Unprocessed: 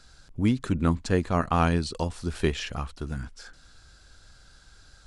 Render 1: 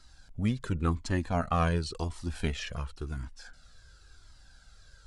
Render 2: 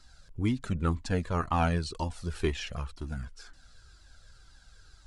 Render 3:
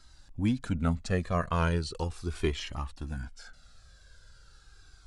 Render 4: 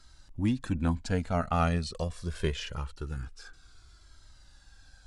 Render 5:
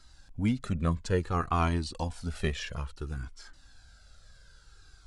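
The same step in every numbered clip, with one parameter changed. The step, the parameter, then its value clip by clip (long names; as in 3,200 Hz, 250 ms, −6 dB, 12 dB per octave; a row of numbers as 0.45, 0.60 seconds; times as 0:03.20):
flanger whose copies keep moving one way, speed: 0.93, 2, 0.38, 0.24, 0.58 Hertz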